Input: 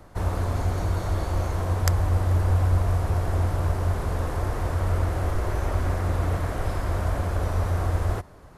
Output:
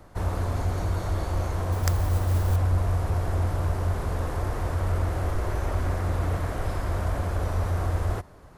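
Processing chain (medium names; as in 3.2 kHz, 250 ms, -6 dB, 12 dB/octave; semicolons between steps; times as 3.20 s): in parallel at -9 dB: hard clipper -19.5 dBFS, distortion -15 dB; 1.72–2.56 s: on the sum: modulation noise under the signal 23 dB; trim -4 dB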